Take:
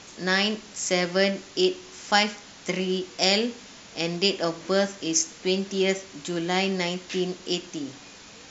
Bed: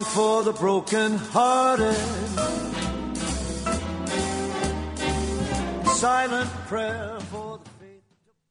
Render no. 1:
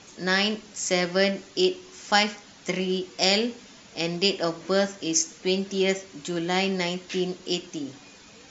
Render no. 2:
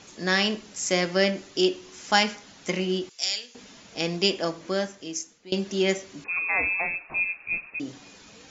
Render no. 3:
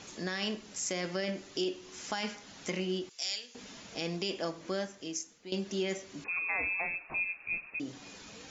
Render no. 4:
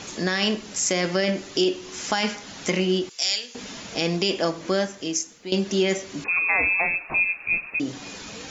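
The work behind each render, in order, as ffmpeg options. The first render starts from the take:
-af "afftdn=nr=6:nf=-47"
-filter_complex "[0:a]asettb=1/sr,asplit=3[a][b][c];[a]atrim=end=3.094[d];[b]atrim=start=3.09:end=3.55,asetpts=PTS-STARTPTS,afade=t=in:d=0.004:c=qsin,afade=t=out:st=0.456:d=0.004:c=qsin,aderivative[e];[c]atrim=start=3.546[f];[d][e]acrossfade=d=0.004:c1=hsin:c2=qsin[g];[g][f]acrossfade=d=0.004:c1=qsin:c2=hsin,asettb=1/sr,asplit=3[h][i][j];[h]atrim=end=6.244[k];[i]atrim=start=6.24:end=7.8,asetpts=PTS-STARTPTS,afade=t=in:d=0.004:c=qsin,afade=t=out:st=1.556:d=0.004:c=qsin,lowpass=f=2.4k:t=q:w=0.5098,lowpass=f=2.4k:t=q:w=0.6013,lowpass=f=2.4k:t=q:w=0.9,lowpass=f=2.4k:t=q:w=2.563,afreqshift=-2800[l];[j]atrim=start=7.796[m];[k][l]acrossfade=d=0.004:c1=hsin:c2=qsin[n];[n][m]acrossfade=d=0.004:c1=qsin:c2=hsin,asplit=2[o][p];[o]atrim=end=5.52,asetpts=PTS-STARTPTS,afade=t=out:st=4.24:d=1.28:silence=0.0891251[q];[p]atrim=start=5.52,asetpts=PTS-STARTPTS,afade=t=in:d=0.004:c=hsin:silence=0.0891251[r];[q][r]concat=n=2:v=0:a=1"
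-af "alimiter=limit=-15dB:level=0:latency=1:release=15,acompressor=threshold=-43dB:ratio=1.5"
-af "volume=11.5dB"

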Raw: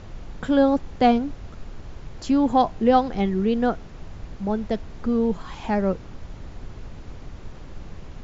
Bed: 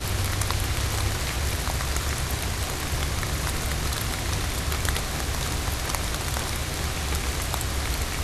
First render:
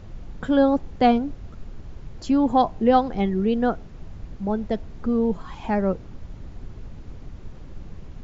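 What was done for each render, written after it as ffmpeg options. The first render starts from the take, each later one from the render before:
-af "afftdn=nr=6:nf=-40"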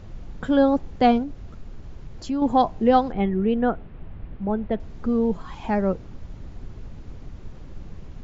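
-filter_complex "[0:a]asettb=1/sr,asplit=3[a][b][c];[a]atrim=end=1.234[d];[b]atrim=start=1.23:end=2.42,asetpts=PTS-STARTPTS,afade=t=in:d=0.004:c=qsin,afade=t=out:st=1.186:d=0.004:c=qsin,acompressor=threshold=-33dB:ratio=1.5:attack=3.2:release=140:knee=1:detection=peak[e];[c]atrim=start=2.416[f];[d][e]acrossfade=d=0.004:c1=hsin:c2=qsin[g];[g][f]acrossfade=d=0.004:c1=qsin:c2=hsin,asettb=1/sr,asplit=3[h][i][j];[h]atrim=end=3.124[k];[i]atrim=start=3.12:end=4.8,asetpts=PTS-STARTPTS,afade=t=in:d=0.004:c=qsin,afade=t=out:st=1.676:d=0.004:c=qsin,lowpass=f=3.1k:w=0.5412,lowpass=f=3.1k:w=1.3066[l];[j]atrim=start=4.796[m];[k][l]acrossfade=d=0.004:c1=hsin:c2=qsin[n];[n][m]acrossfade=d=0.004:c1=qsin:c2=hsin"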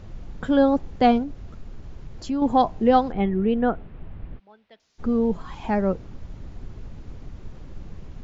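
-filter_complex "[0:a]asplit=3[a][b][c];[a]afade=t=out:st=4.38:d=0.02[d];[b]bandpass=f=5.6k:t=q:w=1.8,afade=t=in:st=4.38:d=0.02,afade=t=out:st=4.98:d=0.02[e];[c]afade=t=in:st=4.98:d=0.02[f];[d][e][f]amix=inputs=3:normalize=0"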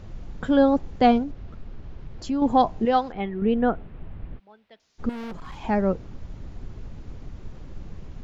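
-filter_complex "[0:a]asettb=1/sr,asplit=3[a][b][c];[a]atrim=end=1.314[d];[b]atrim=start=1.31:end=2.22,asetpts=PTS-STARTPTS,afade=t=in:d=0.004:c=qsin,afade=t=out:st=0.906:d=0.004:c=qsin,lowpass=4.3k[e];[c]atrim=start=2.216[f];[d][e]acrossfade=d=0.004:c1=hsin:c2=qsin[g];[g][f]acrossfade=d=0.004:c1=qsin:c2=hsin,asettb=1/sr,asplit=3[h][i][j];[h]atrim=end=2.854[k];[i]atrim=start=2.85:end=3.42,asetpts=PTS-STARTPTS,afade=t=in:d=0.004:c=qsin,afade=t=out:st=0.566:d=0.004:c=qsin,lowshelf=f=470:g=-9.5[l];[j]atrim=start=3.416[m];[k][l]acrossfade=d=0.004:c1=hsin:c2=qsin[n];[n][m]acrossfade=d=0.004:c1=qsin:c2=hsin,asettb=1/sr,asplit=3[o][p][q];[o]atrim=end=5.094[r];[p]atrim=start=5.09:end=5.63,asetpts=PTS-STARTPTS,afade=t=in:d=0.004:c=qsin,afade=t=out:st=0.536:d=0.004:c=qsin,volume=33dB,asoftclip=hard,volume=-33dB[s];[q]atrim=start=5.626[t];[r][s]acrossfade=d=0.004:c1=hsin:c2=qsin[u];[u][t]acrossfade=d=0.004:c1=qsin:c2=hsin"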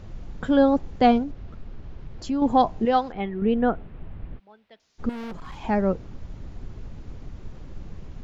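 -af anull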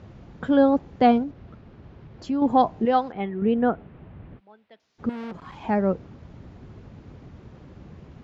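-af "highpass=91,aemphasis=mode=reproduction:type=50fm"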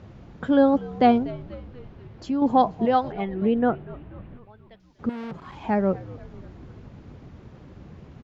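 -filter_complex "[0:a]asplit=6[a][b][c][d][e][f];[b]adelay=242,afreqshift=-85,volume=-18.5dB[g];[c]adelay=484,afreqshift=-170,volume=-23.1dB[h];[d]adelay=726,afreqshift=-255,volume=-27.7dB[i];[e]adelay=968,afreqshift=-340,volume=-32.2dB[j];[f]adelay=1210,afreqshift=-425,volume=-36.8dB[k];[a][g][h][i][j][k]amix=inputs=6:normalize=0"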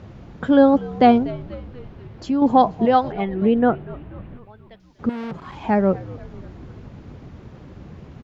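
-af "volume=4.5dB,alimiter=limit=-3dB:level=0:latency=1"

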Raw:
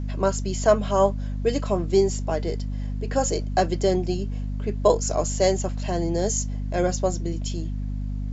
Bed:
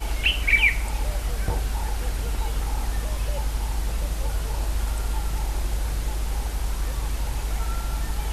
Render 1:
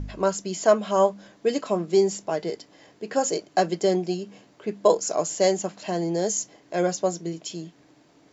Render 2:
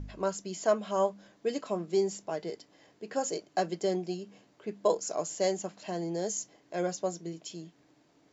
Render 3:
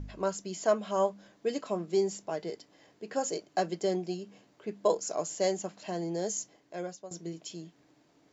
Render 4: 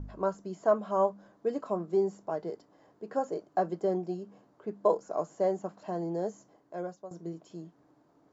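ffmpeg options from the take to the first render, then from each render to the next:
-af "bandreject=f=50:t=h:w=4,bandreject=f=100:t=h:w=4,bandreject=f=150:t=h:w=4,bandreject=f=200:t=h:w=4,bandreject=f=250:t=h:w=4"
-af "volume=-8dB"
-filter_complex "[0:a]asplit=2[a][b];[a]atrim=end=7.11,asetpts=PTS-STARTPTS,afade=t=out:st=6.4:d=0.71:silence=0.141254[c];[b]atrim=start=7.11,asetpts=PTS-STARTPTS,afade=t=in:d=0.004:c=hsin:silence=0.141254[d];[c][d]concat=n=2:v=0:a=1"
-filter_complex "[0:a]acrossover=split=2900[a][b];[b]acompressor=threshold=-47dB:ratio=4:attack=1:release=60[c];[a][c]amix=inputs=2:normalize=0,highshelf=f=1.7k:t=q:w=1.5:g=-10.5"

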